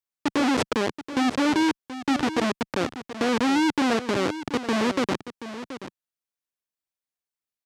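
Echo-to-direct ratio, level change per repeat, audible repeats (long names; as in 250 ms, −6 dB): −12.5 dB, repeats not evenly spaced, 1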